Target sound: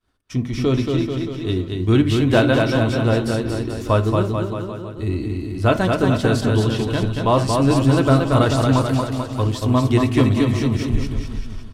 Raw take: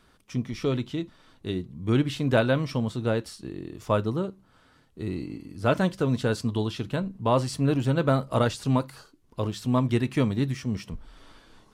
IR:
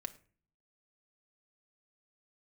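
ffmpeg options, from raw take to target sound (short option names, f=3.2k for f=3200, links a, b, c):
-filter_complex "[0:a]equalizer=f=100:w=1.3:g=6.5,agate=range=-33dB:threshold=-47dB:ratio=3:detection=peak,bandreject=f=80.42:t=h:w=4,bandreject=f=160.84:t=h:w=4,bandreject=f=241.26:t=h:w=4,bandreject=f=321.68:t=h:w=4,bandreject=f=402.1:t=h:w=4,bandreject=f=482.52:t=h:w=4,bandreject=f=562.94:t=h:w=4,bandreject=f=643.36:t=h:w=4,bandreject=f=723.78:t=h:w=4,bandreject=f=804.2:t=h:w=4,bandreject=f=884.62:t=h:w=4,bandreject=f=965.04:t=h:w=4,bandreject=f=1.04546k:t=h:w=4,bandreject=f=1.12588k:t=h:w=4,bandreject=f=1.2063k:t=h:w=4,bandreject=f=1.28672k:t=h:w=4,bandreject=f=1.36714k:t=h:w=4,bandreject=f=1.44756k:t=h:w=4,bandreject=f=1.52798k:t=h:w=4,bandreject=f=1.6084k:t=h:w=4,bandreject=f=1.68882k:t=h:w=4,bandreject=f=1.76924k:t=h:w=4,bandreject=f=1.84966k:t=h:w=4,bandreject=f=1.93008k:t=h:w=4,bandreject=f=2.0105k:t=h:w=4,bandreject=f=2.09092k:t=h:w=4,bandreject=f=2.17134k:t=h:w=4,bandreject=f=2.25176k:t=h:w=4,bandreject=f=2.33218k:t=h:w=4,asubboost=boost=3:cutoff=68,aecho=1:1:230|437|623.3|791|941.9:0.631|0.398|0.251|0.158|0.1,asplit=2[a][b];[1:a]atrim=start_sample=2205,asetrate=61740,aresample=44100[c];[b][c]afir=irnorm=-1:irlink=0,volume=7dB[d];[a][d]amix=inputs=2:normalize=0"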